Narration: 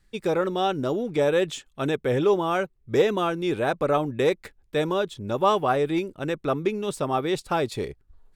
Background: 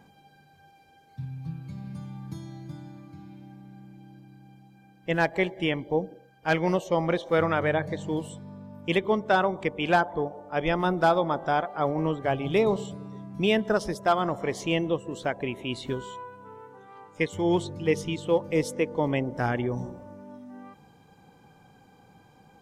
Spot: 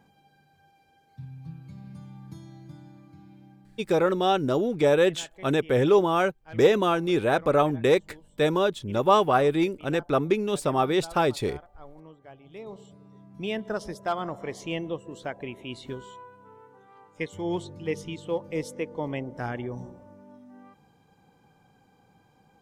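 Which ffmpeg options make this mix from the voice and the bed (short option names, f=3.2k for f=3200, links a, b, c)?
-filter_complex "[0:a]adelay=3650,volume=1.5dB[a];[1:a]volume=11.5dB,afade=t=out:st=3.46:d=0.56:silence=0.141254,afade=t=in:st=12.51:d=1.36:silence=0.149624[b];[a][b]amix=inputs=2:normalize=0"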